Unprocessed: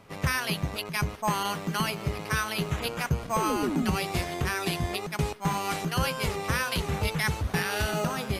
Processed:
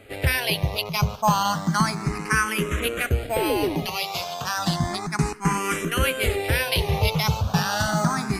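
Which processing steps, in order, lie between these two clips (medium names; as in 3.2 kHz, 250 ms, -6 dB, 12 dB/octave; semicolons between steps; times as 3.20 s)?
3.85–4.56 s: high-pass 1.3 kHz -> 600 Hz 6 dB/octave; barber-pole phaser +0.32 Hz; trim +8.5 dB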